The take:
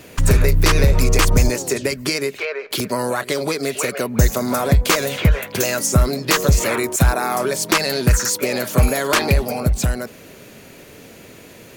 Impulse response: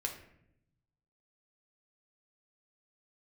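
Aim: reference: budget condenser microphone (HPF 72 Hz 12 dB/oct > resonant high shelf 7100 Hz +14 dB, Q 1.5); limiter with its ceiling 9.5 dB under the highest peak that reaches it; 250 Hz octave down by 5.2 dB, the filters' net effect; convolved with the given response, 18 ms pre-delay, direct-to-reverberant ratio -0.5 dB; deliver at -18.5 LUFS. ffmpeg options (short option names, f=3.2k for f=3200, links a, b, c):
-filter_complex "[0:a]equalizer=f=250:t=o:g=-7.5,alimiter=limit=-14dB:level=0:latency=1,asplit=2[a][b];[1:a]atrim=start_sample=2205,adelay=18[c];[b][c]afir=irnorm=-1:irlink=0,volume=-0.5dB[d];[a][d]amix=inputs=2:normalize=0,highpass=72,highshelf=f=7.1k:t=q:w=1.5:g=14,volume=-4dB"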